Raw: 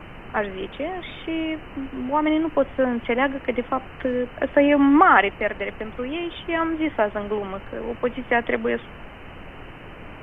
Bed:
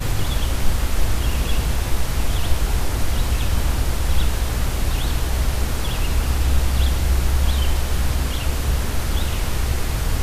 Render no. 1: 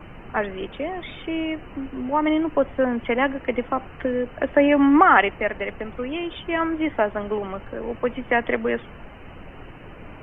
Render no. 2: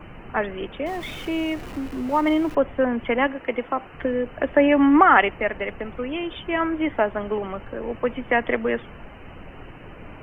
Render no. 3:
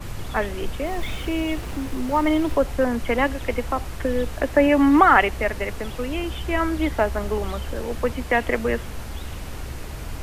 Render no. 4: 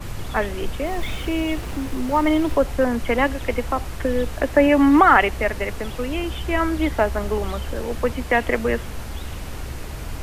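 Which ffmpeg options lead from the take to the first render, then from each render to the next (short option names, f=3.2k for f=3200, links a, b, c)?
-af "afftdn=nr=6:nf=-41"
-filter_complex "[0:a]asettb=1/sr,asplit=3[a][b][c];[a]atrim=end=0.864[d];[b]atrim=start=0.86:end=2.55,asetpts=PTS-STARTPTS,afade=t=in:d=0.004:c=qsin,afade=t=out:st=1.686:d=0.004:c=qsin,aeval=exprs='val(0)+0.5*0.015*sgn(val(0))':c=same[e];[c]atrim=start=2.546[f];[d][e]acrossfade=d=0.004:c1=hsin:c2=qsin[g];[g][f]acrossfade=d=0.004:c1=qsin:c2=hsin,asettb=1/sr,asplit=3[h][i][j];[h]atrim=end=3.274[k];[i]atrim=start=3.27:end=3.94,asetpts=PTS-STARTPTS,afade=t=in:d=0.004:c=qsin,afade=t=out:st=0.666:d=0.004:c=qsin,lowshelf=f=170:g=-11[l];[j]atrim=start=3.936[m];[k][l]acrossfade=d=0.004:c1=hsin:c2=qsin[n];[n][m]acrossfade=d=0.004:c1=qsin:c2=hsin"
-filter_complex "[1:a]volume=-12dB[a];[0:a][a]amix=inputs=2:normalize=0"
-af "volume=1.5dB,alimiter=limit=-2dB:level=0:latency=1"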